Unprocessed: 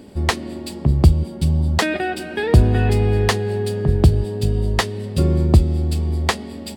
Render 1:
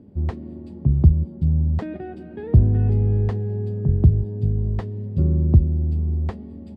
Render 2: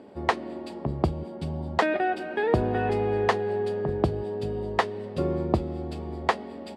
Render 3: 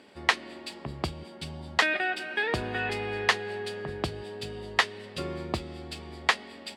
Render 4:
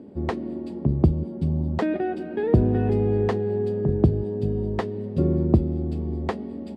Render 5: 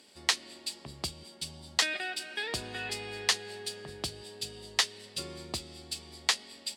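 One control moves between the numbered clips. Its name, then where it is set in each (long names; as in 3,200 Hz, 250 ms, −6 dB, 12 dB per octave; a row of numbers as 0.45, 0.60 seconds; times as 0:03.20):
resonant band-pass, frequency: 110, 760, 2,000, 290, 5,400 Hertz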